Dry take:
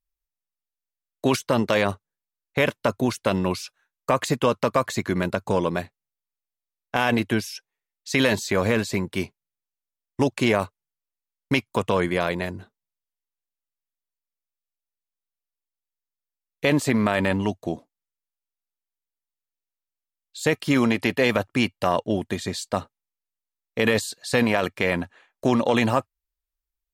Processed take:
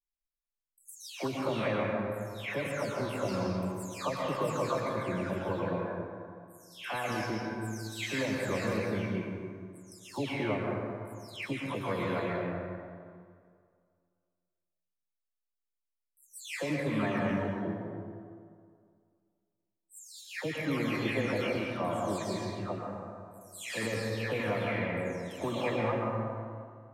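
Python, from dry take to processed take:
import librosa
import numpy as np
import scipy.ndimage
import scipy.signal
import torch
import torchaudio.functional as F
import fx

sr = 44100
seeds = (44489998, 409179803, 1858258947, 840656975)

y = fx.spec_delay(x, sr, highs='early', ms=459)
y = fx.comb_fb(y, sr, f0_hz=110.0, decay_s=1.9, harmonics='all', damping=0.0, mix_pct=60)
y = fx.rev_plate(y, sr, seeds[0], rt60_s=2.1, hf_ratio=0.4, predelay_ms=105, drr_db=-1.0)
y = y * librosa.db_to_amplitude(-4.0)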